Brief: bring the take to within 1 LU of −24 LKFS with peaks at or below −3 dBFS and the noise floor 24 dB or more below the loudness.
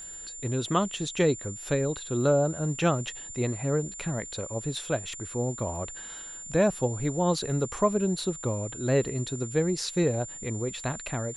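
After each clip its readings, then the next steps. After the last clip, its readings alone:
crackle rate 47 per second; interfering tone 7,200 Hz; level of the tone −39 dBFS; integrated loudness −28.5 LKFS; sample peak −11.0 dBFS; target loudness −24.0 LKFS
→ click removal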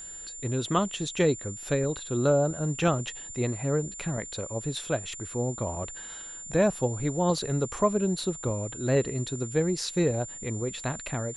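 crackle rate 0.18 per second; interfering tone 7,200 Hz; level of the tone −39 dBFS
→ notch filter 7,200 Hz, Q 30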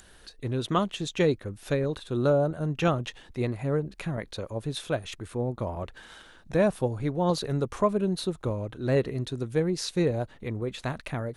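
interfering tone none found; integrated loudness −29.0 LKFS; sample peak −11.5 dBFS; target loudness −24.0 LKFS
→ level +5 dB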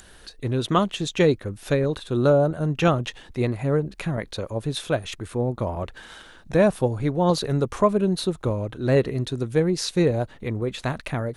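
integrated loudness −24.0 LKFS; sample peak −6.5 dBFS; background noise floor −49 dBFS

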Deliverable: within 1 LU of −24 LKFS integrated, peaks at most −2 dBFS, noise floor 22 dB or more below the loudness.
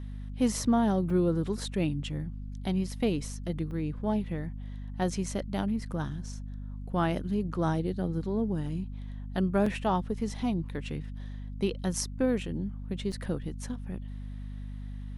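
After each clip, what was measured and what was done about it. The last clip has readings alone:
number of dropouts 4; longest dropout 3.9 ms; mains hum 50 Hz; hum harmonics up to 250 Hz; level of the hum −36 dBFS; integrated loudness −31.5 LKFS; sample peak −14.0 dBFS; target loudness −24.0 LKFS
→ repair the gap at 0:01.10/0:03.71/0:09.66/0:13.12, 3.9 ms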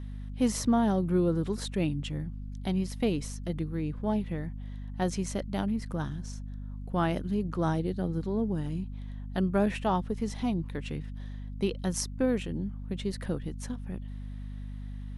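number of dropouts 0; mains hum 50 Hz; hum harmonics up to 250 Hz; level of the hum −36 dBFS
→ mains-hum notches 50/100/150/200/250 Hz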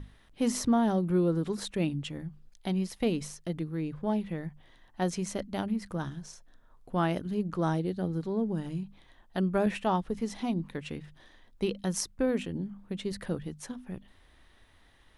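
mains hum none found; integrated loudness −32.0 LKFS; sample peak −14.0 dBFS; target loudness −24.0 LKFS
→ level +8 dB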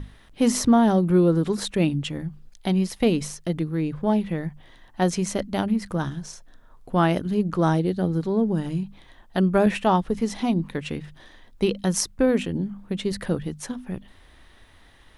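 integrated loudness −24.0 LKFS; sample peak −6.0 dBFS; background noise floor −52 dBFS

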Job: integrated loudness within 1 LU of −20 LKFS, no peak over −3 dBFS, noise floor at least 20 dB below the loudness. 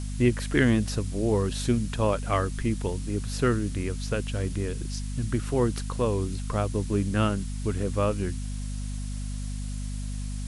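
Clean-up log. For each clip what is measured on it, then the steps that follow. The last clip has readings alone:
mains hum 50 Hz; hum harmonics up to 250 Hz; level of the hum −30 dBFS; background noise floor −33 dBFS; target noise floor −48 dBFS; integrated loudness −28.0 LKFS; sample peak −9.0 dBFS; target loudness −20.0 LKFS
→ hum removal 50 Hz, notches 5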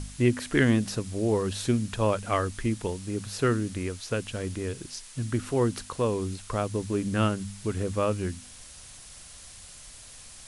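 mains hum none found; background noise floor −47 dBFS; target noise floor −49 dBFS
→ noise reduction from a noise print 6 dB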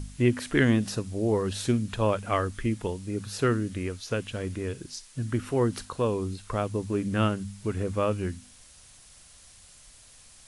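background noise floor −53 dBFS; integrated loudness −28.5 LKFS; sample peak −9.5 dBFS; target loudness −20.0 LKFS
→ level +8.5 dB
brickwall limiter −3 dBFS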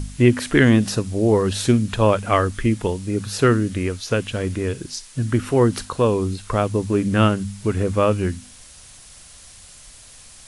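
integrated loudness −20.5 LKFS; sample peak −3.0 dBFS; background noise floor −45 dBFS

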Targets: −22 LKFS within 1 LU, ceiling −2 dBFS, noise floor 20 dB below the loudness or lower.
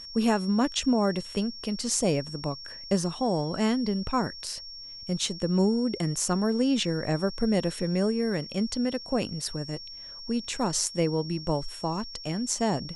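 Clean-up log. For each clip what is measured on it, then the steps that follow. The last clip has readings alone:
interfering tone 5,500 Hz; level of the tone −40 dBFS; integrated loudness −28.0 LKFS; sample peak −11.0 dBFS; target loudness −22.0 LKFS
→ notch filter 5,500 Hz, Q 30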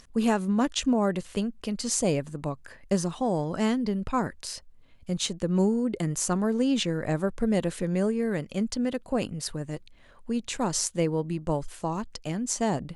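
interfering tone none found; integrated loudness −28.0 LKFS; sample peak −11.0 dBFS; target loudness −22.0 LKFS
→ level +6 dB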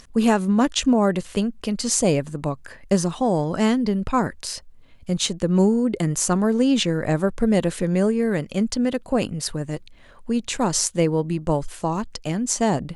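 integrated loudness −22.0 LKFS; sample peak −5.0 dBFS; background noise floor −48 dBFS

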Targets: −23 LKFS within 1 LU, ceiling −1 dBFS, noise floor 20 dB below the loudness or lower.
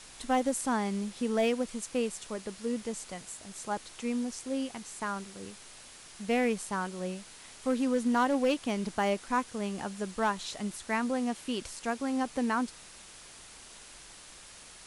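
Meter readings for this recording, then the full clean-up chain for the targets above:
share of clipped samples 0.3%; peaks flattened at −20.0 dBFS; background noise floor −51 dBFS; target noise floor −53 dBFS; integrated loudness −32.5 LKFS; sample peak −20.0 dBFS; target loudness −23.0 LKFS
→ clipped peaks rebuilt −20 dBFS
noise reduction from a noise print 6 dB
level +9.5 dB

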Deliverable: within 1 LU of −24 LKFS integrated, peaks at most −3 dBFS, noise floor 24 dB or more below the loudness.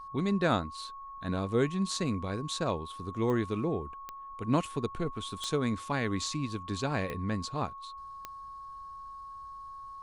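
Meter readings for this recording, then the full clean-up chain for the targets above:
number of clicks 5; interfering tone 1,100 Hz; level of the tone −42 dBFS; integrated loudness −32.5 LKFS; sample peak −14.0 dBFS; target loudness −24.0 LKFS
→ click removal
notch filter 1,100 Hz, Q 30
level +8.5 dB

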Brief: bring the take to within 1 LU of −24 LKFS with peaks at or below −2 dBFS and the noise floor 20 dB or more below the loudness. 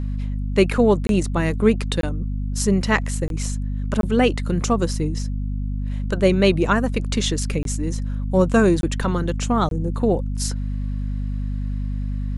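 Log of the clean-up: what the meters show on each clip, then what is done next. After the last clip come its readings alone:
number of dropouts 7; longest dropout 22 ms; mains hum 50 Hz; hum harmonics up to 250 Hz; level of the hum −22 dBFS; integrated loudness −22.0 LKFS; sample peak −3.5 dBFS; target loudness −24.0 LKFS
→ repair the gap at 0:01.07/0:02.01/0:03.28/0:04.01/0:07.63/0:08.81/0:09.69, 22 ms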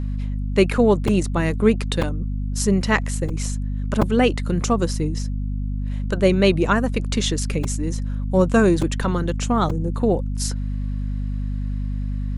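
number of dropouts 0; mains hum 50 Hz; hum harmonics up to 250 Hz; level of the hum −22 dBFS
→ mains-hum notches 50/100/150/200/250 Hz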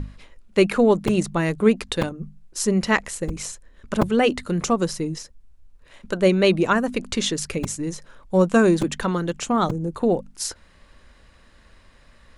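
mains hum none found; integrated loudness −22.0 LKFS; sample peak −4.5 dBFS; target loudness −24.0 LKFS
→ level −2 dB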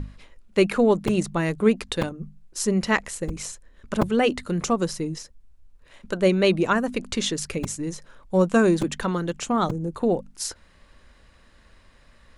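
integrated loudness −24.0 LKFS; sample peak −6.5 dBFS; background noise floor −55 dBFS

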